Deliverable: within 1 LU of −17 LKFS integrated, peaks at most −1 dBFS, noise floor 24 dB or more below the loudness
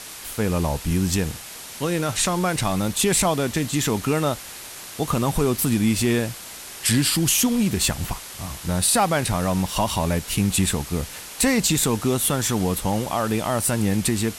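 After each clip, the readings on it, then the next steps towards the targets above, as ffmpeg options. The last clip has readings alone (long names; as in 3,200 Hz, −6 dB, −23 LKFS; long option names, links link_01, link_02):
background noise floor −38 dBFS; target noise floor −46 dBFS; integrated loudness −22.0 LKFS; sample peak −8.0 dBFS; target loudness −17.0 LKFS
→ -af "afftdn=noise_reduction=8:noise_floor=-38"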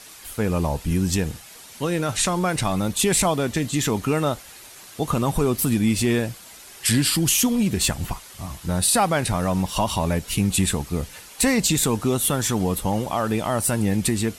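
background noise floor −44 dBFS; target noise floor −46 dBFS
→ -af "afftdn=noise_reduction=6:noise_floor=-44"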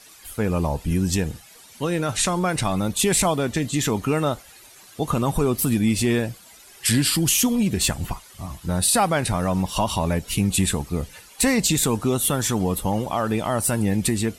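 background noise floor −48 dBFS; integrated loudness −22.0 LKFS; sample peak −8.0 dBFS; target loudness −17.0 LKFS
→ -af "volume=5dB"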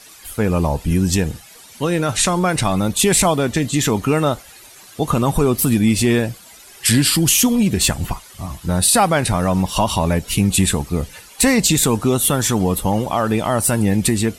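integrated loudness −17.0 LKFS; sample peak −3.0 dBFS; background noise floor −43 dBFS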